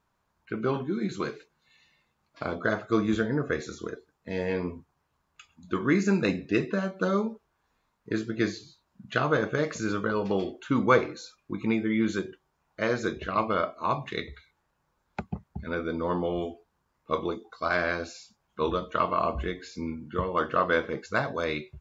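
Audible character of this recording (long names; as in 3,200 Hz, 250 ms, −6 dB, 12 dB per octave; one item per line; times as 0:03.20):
background noise floor −76 dBFS
spectral slope −5.0 dB per octave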